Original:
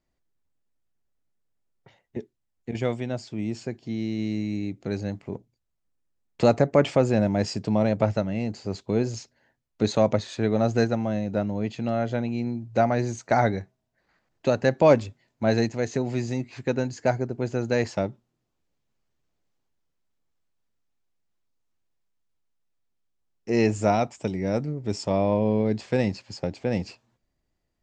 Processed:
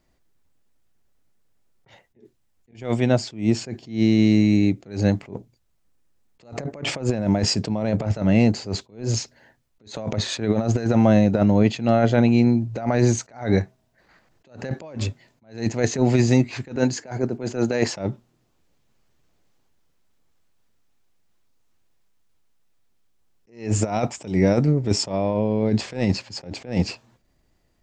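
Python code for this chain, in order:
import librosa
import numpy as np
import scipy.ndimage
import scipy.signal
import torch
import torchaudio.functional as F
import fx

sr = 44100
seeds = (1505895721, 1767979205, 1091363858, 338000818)

y = fx.highpass(x, sr, hz=160.0, slope=12, at=(16.76, 17.96))
y = fx.over_compress(y, sr, threshold_db=-26.0, ratio=-0.5)
y = fx.attack_slew(y, sr, db_per_s=160.0)
y = F.gain(torch.from_numpy(y), 8.5).numpy()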